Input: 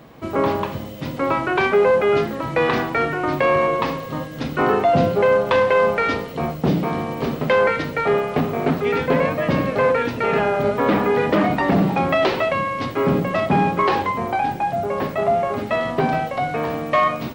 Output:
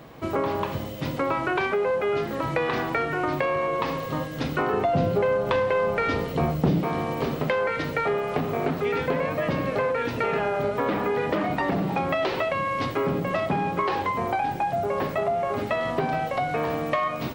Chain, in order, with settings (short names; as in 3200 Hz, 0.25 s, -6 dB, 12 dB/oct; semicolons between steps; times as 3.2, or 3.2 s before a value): bell 220 Hz -4 dB 0.5 oct; compressor, threshold -22 dBFS, peak gain reduction 9.5 dB; 4.73–6.81 low shelf 290 Hz +7 dB